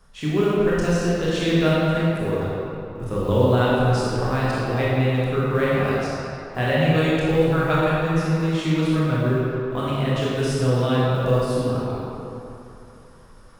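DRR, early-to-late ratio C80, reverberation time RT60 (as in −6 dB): −8.0 dB, −2.5 dB, 2.9 s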